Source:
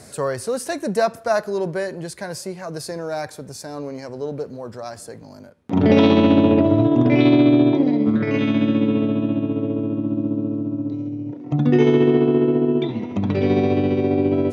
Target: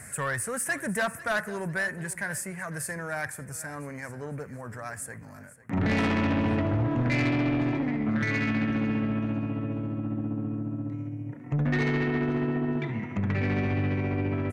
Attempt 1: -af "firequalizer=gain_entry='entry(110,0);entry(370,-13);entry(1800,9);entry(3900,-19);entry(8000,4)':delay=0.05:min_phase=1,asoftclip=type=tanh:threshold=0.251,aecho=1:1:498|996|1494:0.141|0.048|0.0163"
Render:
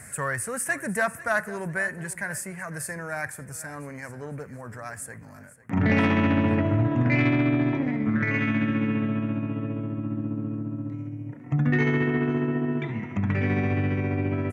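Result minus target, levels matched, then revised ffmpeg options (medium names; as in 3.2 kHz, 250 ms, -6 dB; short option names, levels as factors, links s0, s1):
saturation: distortion -12 dB
-af "firequalizer=gain_entry='entry(110,0);entry(370,-13);entry(1800,9);entry(3900,-19);entry(8000,4)':delay=0.05:min_phase=1,asoftclip=type=tanh:threshold=0.0841,aecho=1:1:498|996|1494:0.141|0.048|0.0163"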